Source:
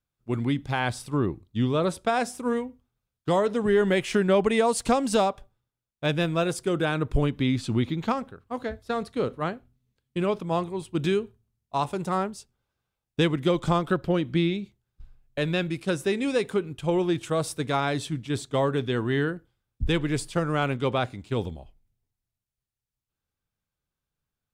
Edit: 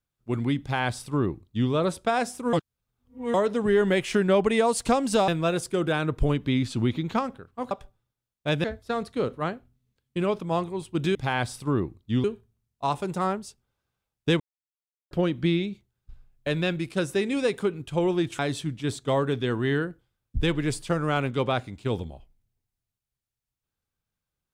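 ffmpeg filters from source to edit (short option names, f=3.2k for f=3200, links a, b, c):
-filter_complex "[0:a]asplit=11[a][b][c][d][e][f][g][h][i][j][k];[a]atrim=end=2.532[l];[b]atrim=start=2.528:end=3.342,asetpts=PTS-STARTPTS,areverse[m];[c]atrim=start=3.338:end=5.282[n];[d]atrim=start=6.208:end=8.642[o];[e]atrim=start=5.278:end=6.212[p];[f]atrim=start=8.638:end=11.152[q];[g]atrim=start=0.608:end=1.702[r];[h]atrim=start=11.148:end=13.31,asetpts=PTS-STARTPTS,afade=t=out:st=2.158:d=0.004:c=hsin[s];[i]atrim=start=13.31:end=14.02,asetpts=PTS-STARTPTS,volume=0[t];[j]atrim=start=14.02:end=17.302,asetpts=PTS-STARTPTS,afade=t=in:d=0.004:c=hsin[u];[k]atrim=start=17.848[v];[l][m]acrossfade=d=0.004:c1=hsin:c2=hsin[w];[w][n]acrossfade=d=0.004:c1=hsin:c2=hsin[x];[x][o]acrossfade=d=0.004:c1=hsin:c2=hsin[y];[y][p]acrossfade=d=0.004:c1=hsin:c2=hsin[z];[z][q]acrossfade=d=0.004:c1=hsin:c2=hsin[aa];[aa][r]acrossfade=d=0.004:c1=hsin:c2=hsin[ab];[s][t][u]concat=n=3:v=0:a=1[ac];[ab][ac]acrossfade=d=0.004:c1=hsin:c2=hsin[ad];[ad][v]acrossfade=d=0.004:c1=hsin:c2=hsin"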